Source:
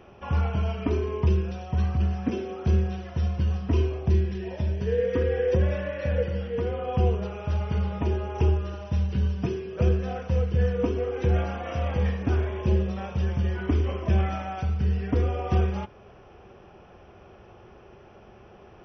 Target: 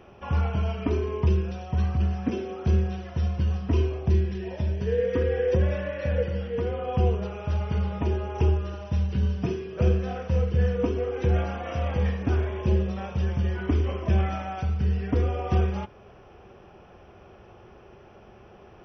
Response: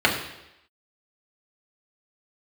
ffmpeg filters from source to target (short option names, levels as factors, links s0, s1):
-filter_complex "[0:a]asettb=1/sr,asplit=3[s0][s1][s2];[s0]atrim=end=9.184[s3];[s1]atrim=start=9.18:end=10.76,asetpts=PTS-STARTPTS,afade=t=in:d=0.004:c=qsin,afade=t=out:st=1.576:d=0.004:c=qsin,asplit=2[s4][s5];[s5]adelay=48,volume=0.355[s6];[s4][s6]amix=inputs=2:normalize=0,atrim=end_sample=69678[s7];[s2]atrim=start=10.756[s8];[s3][s7]acrossfade=d=0.004:c1=hsin:c2=qsin[s9];[s9][s8]acrossfade=d=0.004:c1=qsin:c2=hsin"